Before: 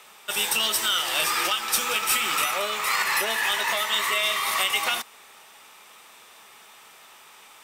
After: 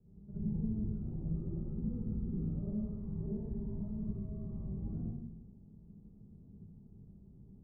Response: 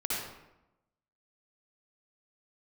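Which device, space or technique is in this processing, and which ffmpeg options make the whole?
club heard from the street: -filter_complex "[0:a]alimiter=limit=-20dB:level=0:latency=1:release=44,lowpass=frequency=160:width=0.5412,lowpass=frequency=160:width=1.3066[link_01];[1:a]atrim=start_sample=2205[link_02];[link_01][link_02]afir=irnorm=-1:irlink=0,volume=18dB"

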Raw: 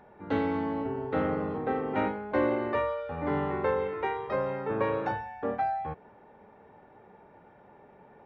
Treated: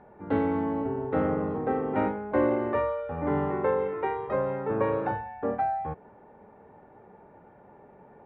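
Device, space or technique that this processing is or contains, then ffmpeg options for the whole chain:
phone in a pocket: -filter_complex "[0:a]lowpass=3300,highshelf=frequency=2100:gain=-10.5,asettb=1/sr,asplit=3[link_01][link_02][link_03];[link_01]atrim=end=3.504[link_04];[link_02]atrim=start=3.5:end=4.06,asetpts=PTS-STARTPTS,afade=type=in:duration=0.004:curve=qsin,afade=type=out:start_time=0.556:duration=0.004:curve=qsin,highpass=110[link_05];[link_03]atrim=start=4.056[link_06];[link_04][link_05]acrossfade=duration=0.004:curve1=hsin:curve2=qsin[link_07];[link_07][link_06]acrossfade=duration=0.004:curve1=qsin:curve2=hsin,volume=3dB"

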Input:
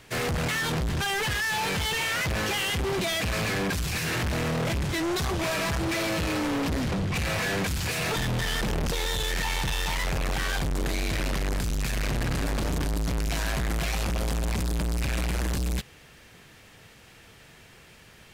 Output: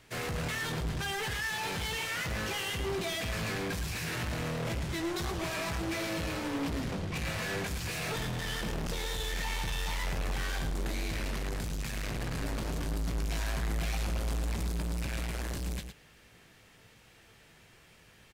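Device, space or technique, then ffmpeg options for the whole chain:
slapback doubling: -filter_complex "[0:a]asplit=3[link_01][link_02][link_03];[link_02]adelay=18,volume=-9dB[link_04];[link_03]adelay=110,volume=-8dB[link_05];[link_01][link_04][link_05]amix=inputs=3:normalize=0,volume=-8dB"

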